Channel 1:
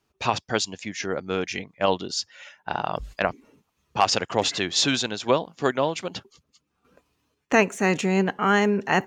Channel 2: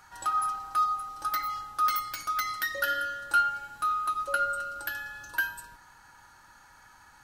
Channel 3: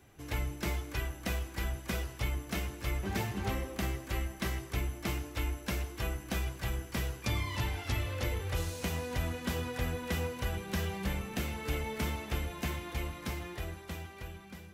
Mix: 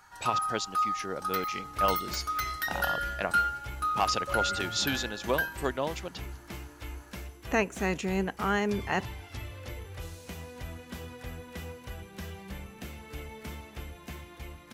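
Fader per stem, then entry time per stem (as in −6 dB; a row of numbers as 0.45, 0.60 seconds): −8.0, −2.0, −7.0 decibels; 0.00, 0.00, 1.45 seconds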